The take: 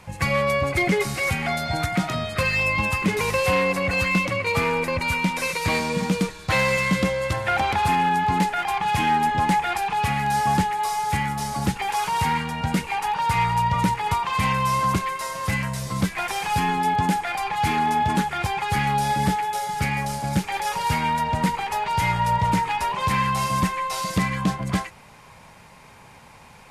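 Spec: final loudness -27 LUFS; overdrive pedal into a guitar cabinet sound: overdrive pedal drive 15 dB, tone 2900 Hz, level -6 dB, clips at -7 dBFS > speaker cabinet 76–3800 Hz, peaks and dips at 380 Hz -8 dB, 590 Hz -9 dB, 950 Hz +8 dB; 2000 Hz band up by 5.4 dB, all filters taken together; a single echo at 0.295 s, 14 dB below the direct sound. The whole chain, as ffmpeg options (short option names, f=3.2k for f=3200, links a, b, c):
-filter_complex "[0:a]equalizer=f=2k:t=o:g=6.5,aecho=1:1:295:0.2,asplit=2[a][b];[b]highpass=f=720:p=1,volume=15dB,asoftclip=type=tanh:threshold=-7dB[c];[a][c]amix=inputs=2:normalize=0,lowpass=f=2.9k:p=1,volume=-6dB,highpass=76,equalizer=f=380:t=q:w=4:g=-8,equalizer=f=590:t=q:w=4:g=-9,equalizer=f=950:t=q:w=4:g=8,lowpass=f=3.8k:w=0.5412,lowpass=f=3.8k:w=1.3066,volume=-13dB"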